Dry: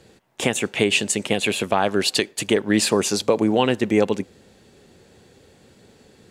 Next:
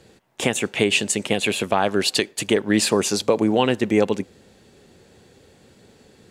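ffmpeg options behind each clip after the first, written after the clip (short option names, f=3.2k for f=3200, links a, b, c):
-af anull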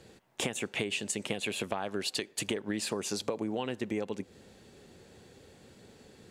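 -af "acompressor=threshold=-26dB:ratio=10,volume=-3.5dB"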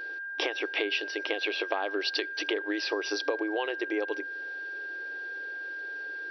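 -af "afftfilt=real='re*between(b*sr/4096,290,5900)':imag='im*between(b*sr/4096,290,5900)':win_size=4096:overlap=0.75,aeval=exprs='val(0)+0.0112*sin(2*PI*1600*n/s)':c=same,volume=4dB"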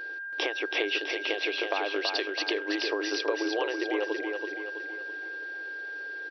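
-af "aecho=1:1:328|656|984|1312|1640|1968:0.596|0.28|0.132|0.0618|0.0291|0.0137"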